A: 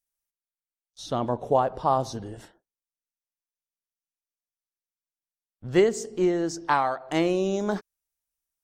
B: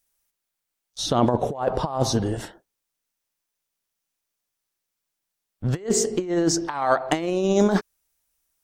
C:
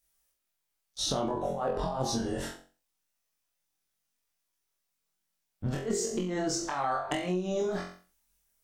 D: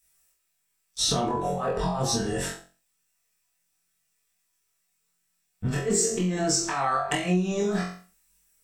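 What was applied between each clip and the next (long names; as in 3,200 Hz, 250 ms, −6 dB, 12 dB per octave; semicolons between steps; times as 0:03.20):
compressor whose output falls as the input rises −28 dBFS, ratio −0.5; level +7.5 dB
multi-voice chorus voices 6, 0.25 Hz, delay 24 ms, depth 3.5 ms; flutter between parallel walls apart 3.8 metres, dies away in 0.35 s; downward compressor 12 to 1, threshold −27 dBFS, peak gain reduction 13.5 dB
convolution reverb, pre-delay 3 ms, DRR 1 dB; level +6.5 dB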